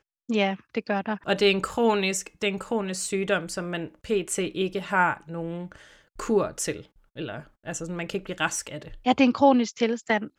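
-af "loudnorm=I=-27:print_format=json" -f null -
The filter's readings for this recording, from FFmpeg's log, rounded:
"input_i" : "-25.6",
"input_tp" : "-6.5",
"input_lra" : "5.0",
"input_thresh" : "-36.2",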